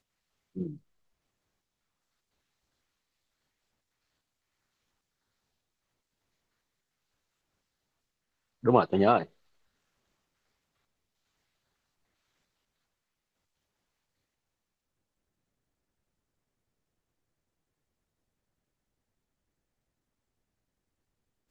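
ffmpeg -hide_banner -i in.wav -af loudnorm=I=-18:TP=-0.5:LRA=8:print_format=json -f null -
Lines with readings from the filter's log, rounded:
"input_i" : "-25.5",
"input_tp" : "-6.6",
"input_lra" : "17.1",
"input_thresh" : "-38.0",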